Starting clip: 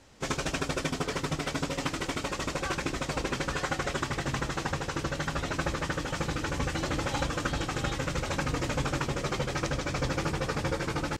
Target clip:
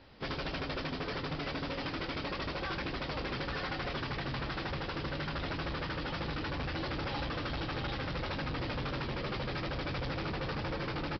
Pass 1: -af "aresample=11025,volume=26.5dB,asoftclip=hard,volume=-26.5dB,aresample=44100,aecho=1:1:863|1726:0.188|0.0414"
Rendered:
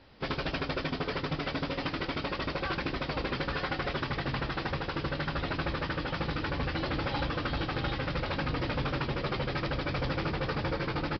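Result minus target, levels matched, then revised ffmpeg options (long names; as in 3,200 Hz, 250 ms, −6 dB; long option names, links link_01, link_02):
gain into a clipping stage and back: distortion −7 dB
-af "aresample=11025,volume=34dB,asoftclip=hard,volume=-34dB,aresample=44100,aecho=1:1:863|1726:0.188|0.0414"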